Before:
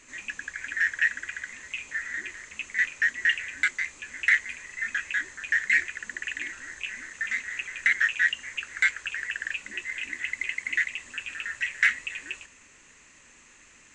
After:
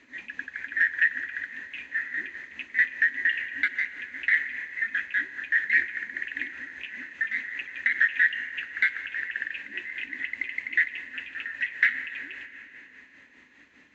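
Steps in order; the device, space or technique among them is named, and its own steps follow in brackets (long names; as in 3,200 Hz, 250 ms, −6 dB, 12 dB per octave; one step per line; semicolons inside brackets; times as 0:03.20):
combo amplifier with spring reverb and tremolo (spring reverb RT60 3.4 s, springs 39/44 ms, chirp 35 ms, DRR 10 dB; amplitude tremolo 5 Hz, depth 49%; loudspeaker in its box 78–4,100 Hz, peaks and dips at 120 Hz −5 dB, 270 Hz +9 dB, 1,200 Hz −6 dB, 1,800 Hz +5 dB, 2,700 Hz −4 dB)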